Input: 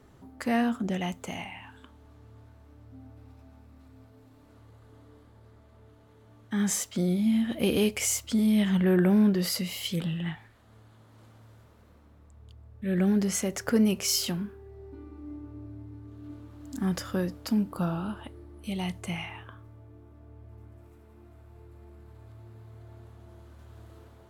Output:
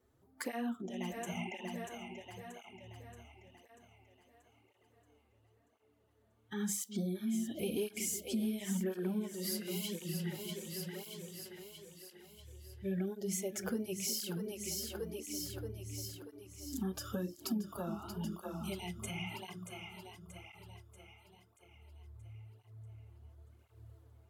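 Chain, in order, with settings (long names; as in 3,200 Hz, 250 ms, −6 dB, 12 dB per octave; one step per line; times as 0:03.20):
high-shelf EQ 8,900 Hz +12 dB
noise reduction from a noise print of the clip's start 16 dB
parametric band 400 Hz +5 dB 0.92 octaves
mains-hum notches 50/100/150/200/250/300/350 Hz
echo with a time of its own for lows and highs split 350 Hz, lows 364 ms, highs 633 ms, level −10 dB
downward compressor 4 to 1, threshold −35 dBFS, peak gain reduction 16 dB
through-zero flanger with one copy inverted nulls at 0.95 Hz, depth 7.3 ms
level +1 dB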